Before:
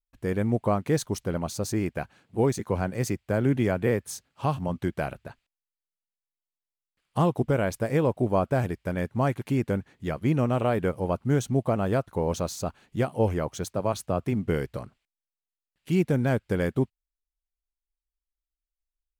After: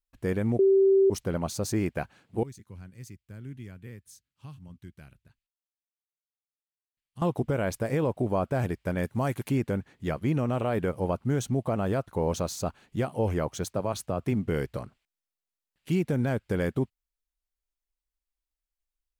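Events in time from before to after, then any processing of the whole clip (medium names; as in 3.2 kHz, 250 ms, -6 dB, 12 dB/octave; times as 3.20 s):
0.59–1.10 s: bleep 388 Hz -8.5 dBFS
2.43–7.22 s: amplifier tone stack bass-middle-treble 6-0-2
9.03–9.49 s: treble shelf 6.1 kHz +10.5 dB
whole clip: peak limiter -16.5 dBFS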